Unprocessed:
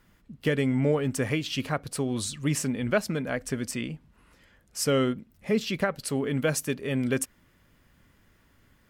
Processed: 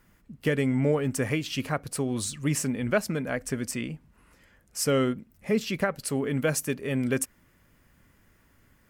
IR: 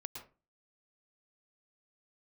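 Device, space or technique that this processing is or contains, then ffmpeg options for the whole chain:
exciter from parts: -filter_complex "[0:a]asplit=2[link_01][link_02];[link_02]highpass=frequency=2800:width=0.5412,highpass=frequency=2800:width=1.3066,asoftclip=type=tanh:threshold=-30.5dB,highpass=frequency=2900:poles=1,volume=-6dB[link_03];[link_01][link_03]amix=inputs=2:normalize=0"

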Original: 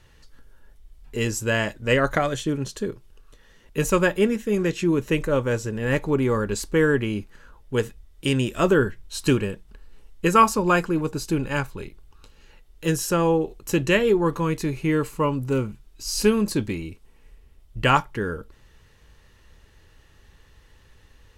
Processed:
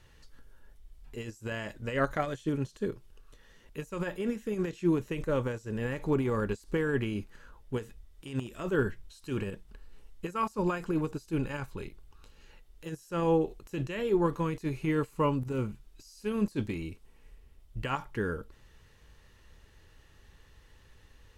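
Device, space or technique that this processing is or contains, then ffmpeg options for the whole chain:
de-esser from a sidechain: -filter_complex "[0:a]asplit=2[link_01][link_02];[link_02]highpass=frequency=6000:width=0.5412,highpass=frequency=6000:width=1.3066,apad=whole_len=942726[link_03];[link_01][link_03]sidechaincompress=threshold=-54dB:ratio=5:attack=0.92:release=39,volume=-4dB"

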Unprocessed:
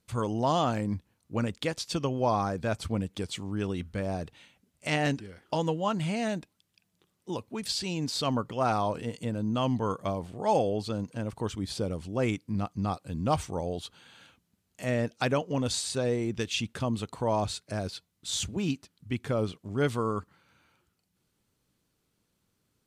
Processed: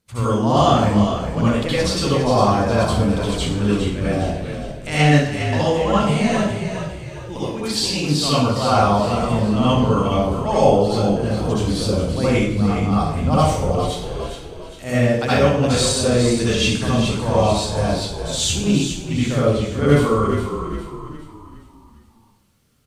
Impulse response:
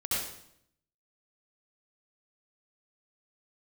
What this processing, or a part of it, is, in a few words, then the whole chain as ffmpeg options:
bathroom: -filter_complex "[1:a]atrim=start_sample=2205[link_01];[0:a][link_01]afir=irnorm=-1:irlink=0,asplit=6[link_02][link_03][link_04][link_05][link_06][link_07];[link_03]adelay=409,afreqshift=-43,volume=-8dB[link_08];[link_04]adelay=818,afreqshift=-86,volume=-15.1dB[link_09];[link_05]adelay=1227,afreqshift=-129,volume=-22.3dB[link_10];[link_06]adelay=1636,afreqshift=-172,volume=-29.4dB[link_11];[link_07]adelay=2045,afreqshift=-215,volume=-36.5dB[link_12];[link_02][link_08][link_09][link_10][link_11][link_12]amix=inputs=6:normalize=0,volume=4.5dB"

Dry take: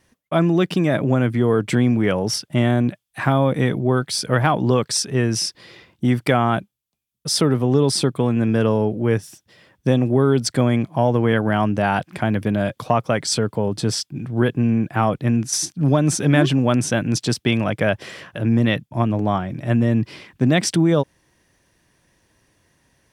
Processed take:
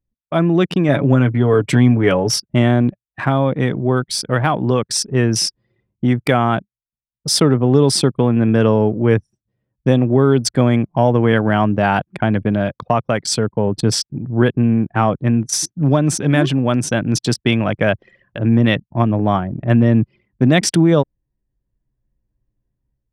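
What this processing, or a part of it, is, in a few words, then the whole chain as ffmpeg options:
voice memo with heavy noise removal: -filter_complex "[0:a]asettb=1/sr,asplit=3[link_01][link_02][link_03];[link_01]atrim=end=0.884[link_04];[link_02]atrim=start=0.88:end=2.4,asetpts=PTS-STARTPTS,afade=type=in:duration=0.004:curve=qsin,afade=type=out:start_time=1.516:duration=0.004:curve=qsin,aecho=1:1:7.1:0.52,atrim=end_sample=67032[link_05];[link_03]atrim=start=2.396[link_06];[link_04][link_05]acrossfade=duration=0.004:curve1=hsin:curve2=qsin[link_07];[link_07][link_06]acrossfade=duration=0.004:curve1=qsin:curve2=hsin,anlmdn=158,dynaudnorm=framelen=290:gausssize=3:maxgain=7dB"

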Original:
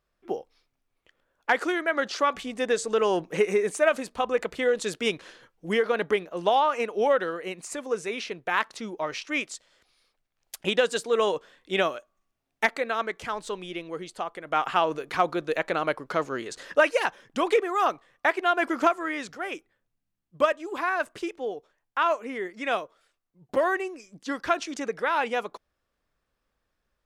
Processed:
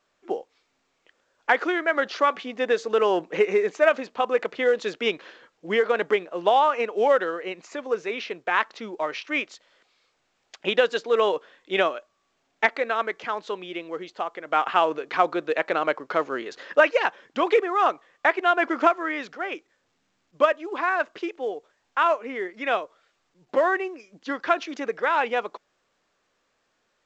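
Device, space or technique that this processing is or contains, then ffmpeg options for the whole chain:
telephone: -af "highpass=270,lowpass=3600,volume=3dB" -ar 16000 -c:a pcm_alaw

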